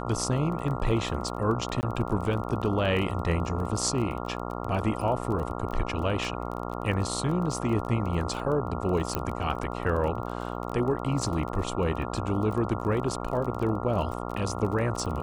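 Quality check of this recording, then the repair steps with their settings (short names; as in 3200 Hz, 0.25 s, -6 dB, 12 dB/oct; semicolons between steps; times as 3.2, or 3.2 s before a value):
buzz 60 Hz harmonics 23 -34 dBFS
crackle 21/s -33 dBFS
1.81–1.83 gap 19 ms
9.15 pop -12 dBFS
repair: de-click; de-hum 60 Hz, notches 23; interpolate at 1.81, 19 ms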